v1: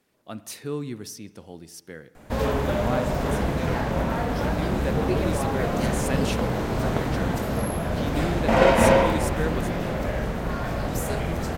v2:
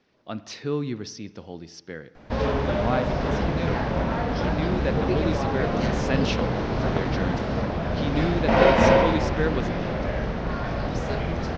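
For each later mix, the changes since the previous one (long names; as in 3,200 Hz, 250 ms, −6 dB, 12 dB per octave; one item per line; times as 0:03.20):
speech +3.5 dB
master: add Butterworth low-pass 5,800 Hz 48 dB per octave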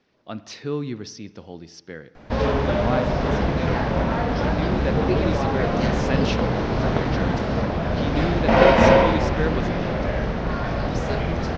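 background +3.0 dB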